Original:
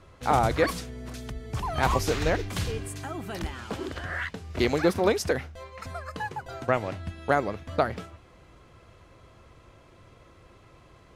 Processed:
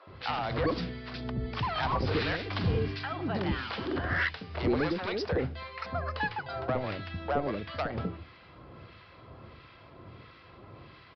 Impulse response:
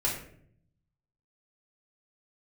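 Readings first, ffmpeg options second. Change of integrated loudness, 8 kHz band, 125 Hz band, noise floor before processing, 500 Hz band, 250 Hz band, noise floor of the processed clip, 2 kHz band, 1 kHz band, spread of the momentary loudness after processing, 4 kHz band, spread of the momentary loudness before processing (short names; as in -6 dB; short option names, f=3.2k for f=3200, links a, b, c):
-3.5 dB, under -20 dB, -1.0 dB, -55 dBFS, -5.0 dB, -2.0 dB, -54 dBFS, -1.5 dB, -5.0 dB, 21 LU, -1.0 dB, 15 LU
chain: -filter_complex "[0:a]highpass=82,acompressor=threshold=-25dB:ratio=6,aresample=11025,asoftclip=type=tanh:threshold=-26dB,aresample=44100,acrossover=split=1200[a][b];[a]aeval=exprs='val(0)*(1-0.7/2+0.7/2*cos(2*PI*1.5*n/s))':c=same[c];[b]aeval=exprs='val(0)*(1-0.7/2-0.7/2*cos(2*PI*1.5*n/s))':c=same[d];[c][d]amix=inputs=2:normalize=0,acrossover=split=520[e][f];[e]adelay=70[g];[g][f]amix=inputs=2:normalize=0,volume=8dB"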